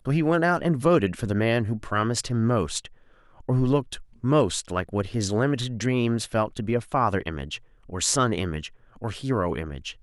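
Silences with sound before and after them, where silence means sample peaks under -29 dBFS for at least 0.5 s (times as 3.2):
2.85–3.49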